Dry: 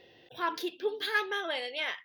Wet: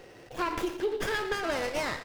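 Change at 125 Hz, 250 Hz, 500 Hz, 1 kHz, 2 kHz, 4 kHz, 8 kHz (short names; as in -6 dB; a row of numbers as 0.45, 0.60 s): n/a, +6.5 dB, +4.0 dB, +2.0 dB, -1.0 dB, -3.0 dB, +9.5 dB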